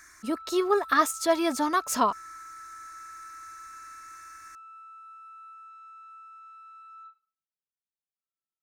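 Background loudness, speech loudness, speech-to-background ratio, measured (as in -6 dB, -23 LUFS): -45.0 LUFS, -26.0 LUFS, 19.0 dB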